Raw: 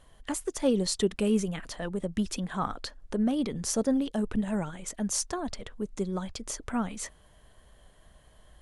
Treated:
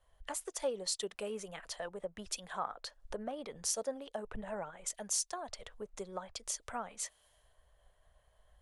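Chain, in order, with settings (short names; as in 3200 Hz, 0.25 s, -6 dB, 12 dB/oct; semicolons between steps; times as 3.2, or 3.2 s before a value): resonant low shelf 390 Hz -12 dB, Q 1.5; compressor 3:1, threshold -48 dBFS, peak gain reduction 19 dB; three-band expander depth 100%; gain +5.5 dB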